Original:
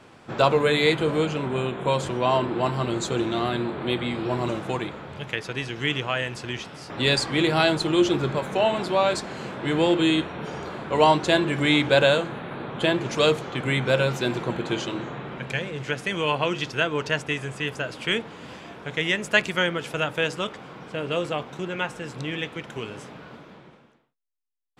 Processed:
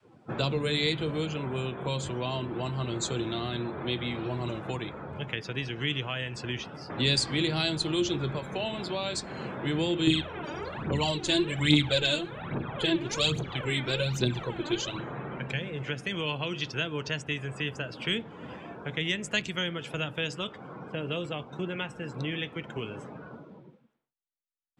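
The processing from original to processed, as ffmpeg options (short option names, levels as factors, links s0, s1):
-filter_complex "[0:a]asettb=1/sr,asplit=3[s0][s1][s2];[s0]atrim=end=10.074[s3];[s1]atrim=start=10.07:end=15,asetpts=PTS-STARTPTS,afade=t=in:d=0.004:c=qsin,afade=t=out:st=4.926:d=0.004:c=qsin,aphaser=in_gain=1:out_gain=1:delay=3.5:decay=0.67:speed=1.2:type=triangular[s4];[s2]atrim=start=14.996[s5];[s3][s4]acrossfade=d=0.004:c1=hsin:c2=qsin[s6];[s6][s5]acrossfade=d=0.004:c1=qsin:c2=hsin,adynamicequalizer=threshold=0.0141:dfrequency=220:dqfactor=0.86:tfrequency=220:tqfactor=0.86:attack=5:release=100:ratio=0.375:range=3:mode=cutabove:tftype=bell,afftdn=nr=18:nf=-43,acrossover=split=310|3000[s7][s8][s9];[s8]acompressor=threshold=0.0141:ratio=4[s10];[s7][s10][s9]amix=inputs=3:normalize=0"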